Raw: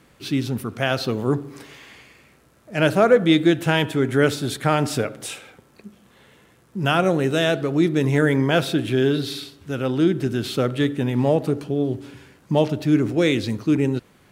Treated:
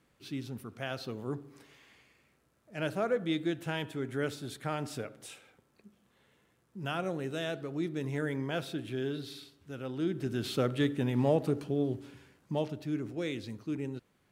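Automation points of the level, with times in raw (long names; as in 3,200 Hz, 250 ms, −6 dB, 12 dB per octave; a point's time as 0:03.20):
0:09.93 −15.5 dB
0:10.48 −8 dB
0:11.79 −8 dB
0:12.96 −16.5 dB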